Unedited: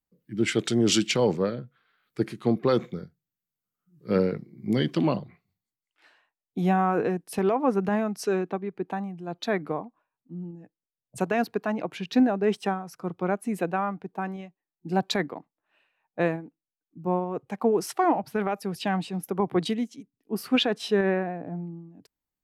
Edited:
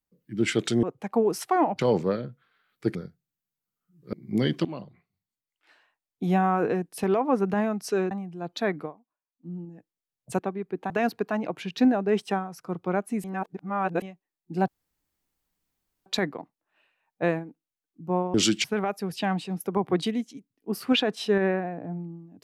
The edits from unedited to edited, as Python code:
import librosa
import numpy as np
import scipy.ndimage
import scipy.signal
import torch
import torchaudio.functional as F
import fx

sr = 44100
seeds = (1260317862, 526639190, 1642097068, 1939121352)

y = fx.edit(x, sr, fx.swap(start_s=0.83, length_s=0.3, other_s=17.31, other_length_s=0.96),
    fx.cut(start_s=2.29, length_s=0.64),
    fx.cut(start_s=4.11, length_s=0.37),
    fx.fade_in_from(start_s=5.0, length_s=1.67, curve='qsin', floor_db=-15.5),
    fx.move(start_s=8.46, length_s=0.51, to_s=11.25),
    fx.fade_down_up(start_s=9.65, length_s=0.7, db=-18.5, fade_s=0.14),
    fx.reverse_span(start_s=13.59, length_s=0.78),
    fx.insert_room_tone(at_s=15.03, length_s=1.38), tone=tone)